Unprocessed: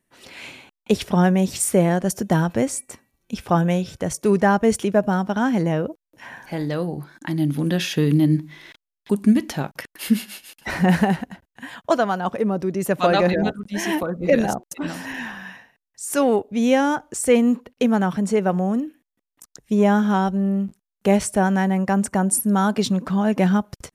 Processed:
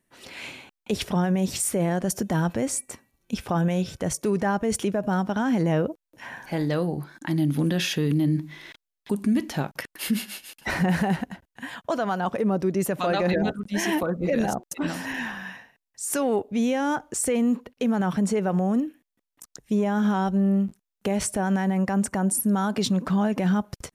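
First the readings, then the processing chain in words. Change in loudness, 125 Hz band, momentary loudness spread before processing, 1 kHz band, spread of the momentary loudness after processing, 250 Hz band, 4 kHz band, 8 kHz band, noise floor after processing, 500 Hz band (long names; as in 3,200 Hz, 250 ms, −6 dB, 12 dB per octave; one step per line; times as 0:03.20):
−4.5 dB, −3.5 dB, 14 LU, −5.5 dB, 11 LU, −4.0 dB, −2.0 dB, −2.0 dB, −85 dBFS, −5.5 dB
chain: brickwall limiter −15.5 dBFS, peak gain reduction 10.5 dB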